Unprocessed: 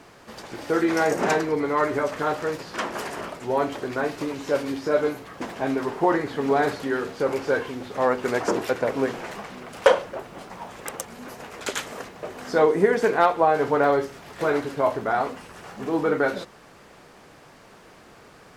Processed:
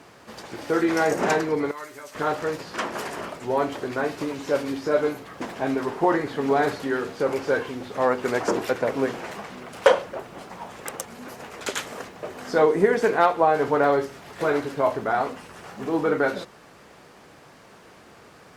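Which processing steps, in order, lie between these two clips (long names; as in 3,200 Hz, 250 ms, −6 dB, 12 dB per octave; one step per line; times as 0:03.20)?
high-pass filter 51 Hz
0:01.71–0:02.15: first-order pre-emphasis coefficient 0.9
Opus 64 kbit/s 48,000 Hz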